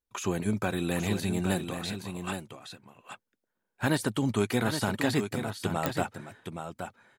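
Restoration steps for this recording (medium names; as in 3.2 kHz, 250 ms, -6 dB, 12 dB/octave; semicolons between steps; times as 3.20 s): de-click; interpolate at 1.79 s, 1.5 ms; inverse comb 821 ms -7.5 dB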